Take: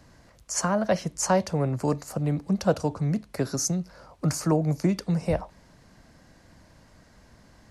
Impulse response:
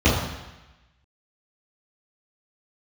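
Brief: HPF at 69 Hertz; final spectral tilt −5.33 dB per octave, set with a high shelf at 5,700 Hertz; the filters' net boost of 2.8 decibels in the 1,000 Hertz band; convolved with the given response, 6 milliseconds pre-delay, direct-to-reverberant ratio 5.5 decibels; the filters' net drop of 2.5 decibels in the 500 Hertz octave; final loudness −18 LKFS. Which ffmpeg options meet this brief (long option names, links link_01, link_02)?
-filter_complex "[0:a]highpass=69,equalizer=frequency=500:width_type=o:gain=-4.5,equalizer=frequency=1000:width_type=o:gain=5,highshelf=frequency=5700:gain=8,asplit=2[link_01][link_02];[1:a]atrim=start_sample=2205,adelay=6[link_03];[link_02][link_03]afir=irnorm=-1:irlink=0,volume=-26dB[link_04];[link_01][link_04]amix=inputs=2:normalize=0,volume=5.5dB"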